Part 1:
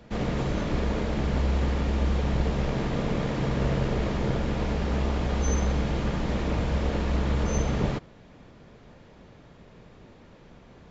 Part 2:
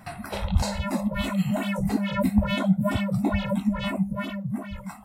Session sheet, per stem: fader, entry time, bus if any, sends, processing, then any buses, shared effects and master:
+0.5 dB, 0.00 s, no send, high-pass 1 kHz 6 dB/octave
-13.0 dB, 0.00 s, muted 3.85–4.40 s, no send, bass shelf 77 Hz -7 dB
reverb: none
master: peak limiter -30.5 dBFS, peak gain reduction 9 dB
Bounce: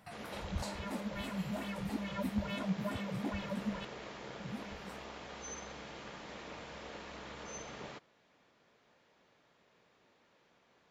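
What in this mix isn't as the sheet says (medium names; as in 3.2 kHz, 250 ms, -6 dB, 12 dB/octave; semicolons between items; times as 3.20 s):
stem 1 +0.5 dB -> -10.0 dB; master: missing peak limiter -30.5 dBFS, peak gain reduction 9 dB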